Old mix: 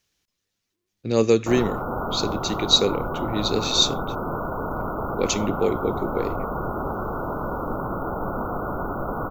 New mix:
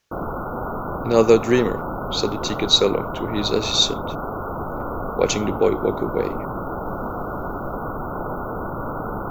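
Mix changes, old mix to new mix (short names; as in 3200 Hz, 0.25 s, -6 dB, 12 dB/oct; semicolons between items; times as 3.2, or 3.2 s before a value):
speech: add bell 920 Hz +8 dB 2.3 oct; background: entry -1.35 s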